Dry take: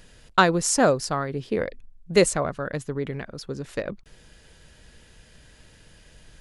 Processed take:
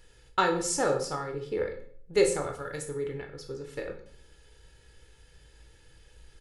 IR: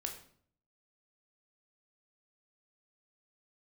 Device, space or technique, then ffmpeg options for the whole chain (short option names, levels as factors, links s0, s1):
microphone above a desk: -filter_complex "[0:a]asettb=1/sr,asplit=3[s0][s1][s2];[s0]atrim=end=2.414[s3];[s1]atrim=start=2.41:end=2.85,asetpts=PTS-STARTPTS,afade=t=in:d=0.004:c=qsin,afade=t=out:st=0.436:d=0.004:c=qsin,aemphasis=mode=production:type=75fm[s4];[s2]atrim=start=2.846[s5];[s3][s4]acrossfade=d=0.004:c1=hsin:c2=qsin[s6];[s6][s5]acrossfade=d=0.004:c1=qsin:c2=hsin,aecho=1:1:2.3:0.6[s7];[1:a]atrim=start_sample=2205[s8];[s7][s8]afir=irnorm=-1:irlink=0,volume=0.447"